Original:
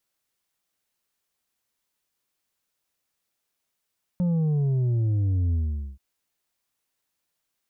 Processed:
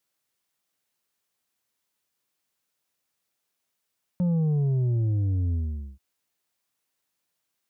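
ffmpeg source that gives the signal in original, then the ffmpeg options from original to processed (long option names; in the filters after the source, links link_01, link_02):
-f lavfi -i "aevalsrc='0.0891*clip((1.78-t)/0.45,0,1)*tanh(1.78*sin(2*PI*180*1.78/log(65/180)*(exp(log(65/180)*t/1.78)-1)))/tanh(1.78)':duration=1.78:sample_rate=44100"
-af "highpass=76"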